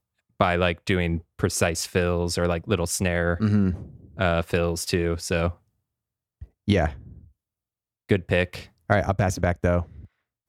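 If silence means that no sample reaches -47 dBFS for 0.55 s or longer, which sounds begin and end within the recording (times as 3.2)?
6.42–7.27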